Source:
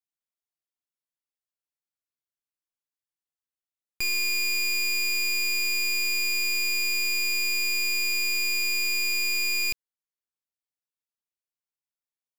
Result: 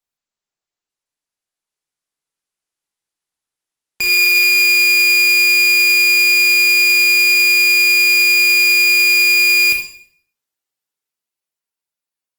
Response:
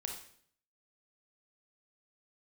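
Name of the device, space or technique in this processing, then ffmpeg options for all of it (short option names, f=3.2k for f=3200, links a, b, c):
far-field microphone of a smart speaker: -filter_complex "[1:a]atrim=start_sample=2205[a];[0:a][a]afir=irnorm=-1:irlink=0,highpass=f=130:p=1,dynaudnorm=f=200:g=17:m=5dB,volume=8dB" -ar 48000 -c:a libopus -b:a 20k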